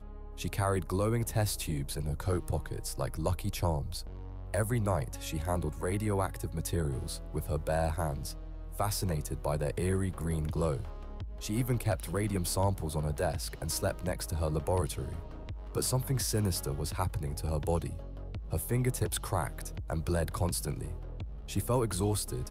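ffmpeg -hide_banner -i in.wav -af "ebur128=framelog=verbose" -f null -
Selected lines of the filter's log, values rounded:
Integrated loudness:
  I:         -33.3 LUFS
  Threshold: -43.5 LUFS
Loudness range:
  LRA:         1.4 LU
  Threshold: -53.6 LUFS
  LRA low:   -34.3 LUFS
  LRA high:  -32.9 LUFS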